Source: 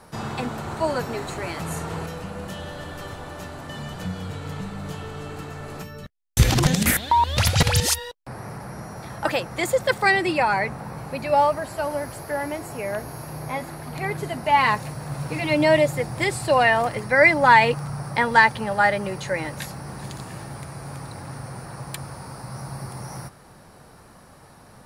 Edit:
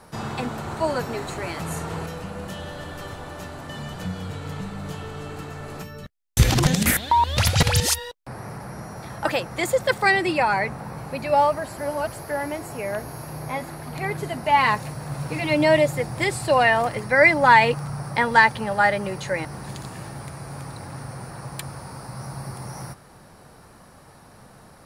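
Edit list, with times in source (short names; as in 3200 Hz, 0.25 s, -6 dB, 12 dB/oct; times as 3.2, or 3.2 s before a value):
11.78–12.07 reverse
19.45–19.8 cut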